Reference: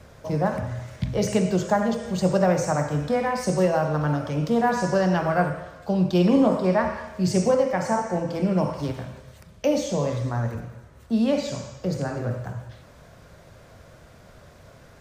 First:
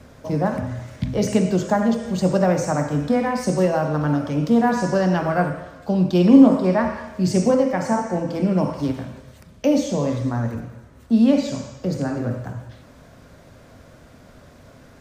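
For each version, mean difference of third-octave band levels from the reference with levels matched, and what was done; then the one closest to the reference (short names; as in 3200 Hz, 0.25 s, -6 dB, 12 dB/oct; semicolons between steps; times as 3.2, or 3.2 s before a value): 2.5 dB: bell 260 Hz +9.5 dB 0.46 oct; gain +1 dB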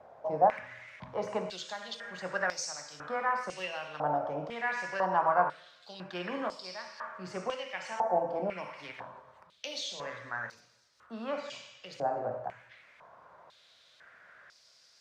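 8.5 dB: stepped band-pass 2 Hz 750–4900 Hz; gain +6 dB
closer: first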